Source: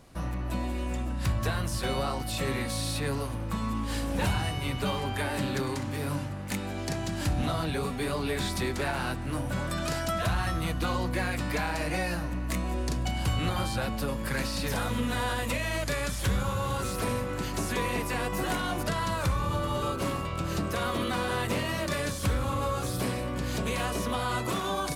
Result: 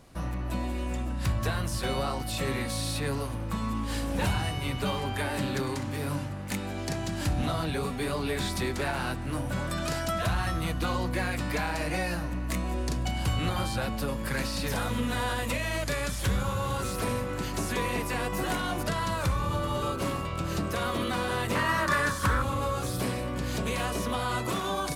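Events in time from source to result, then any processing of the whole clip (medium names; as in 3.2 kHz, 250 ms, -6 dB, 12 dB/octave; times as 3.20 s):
21.55–22.42 s: high-order bell 1.3 kHz +11 dB 1.2 oct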